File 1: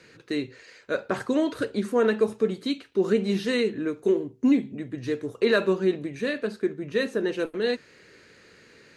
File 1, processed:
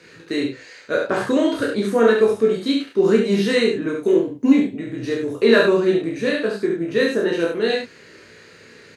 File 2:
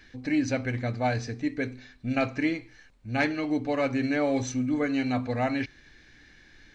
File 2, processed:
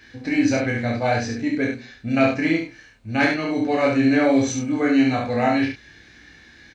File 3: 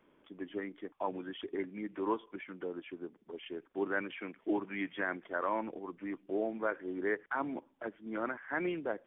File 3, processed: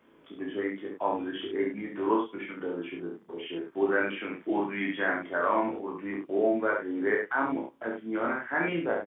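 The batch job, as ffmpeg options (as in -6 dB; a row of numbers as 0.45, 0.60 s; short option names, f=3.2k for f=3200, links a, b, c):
-filter_complex "[0:a]highpass=61,asplit=2[a][b];[b]adelay=30,volume=-3.5dB[c];[a][c]amix=inputs=2:normalize=0,aecho=1:1:18|69:0.596|0.668,volume=3.5dB"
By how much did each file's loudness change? +7.0, +7.5, +7.5 LU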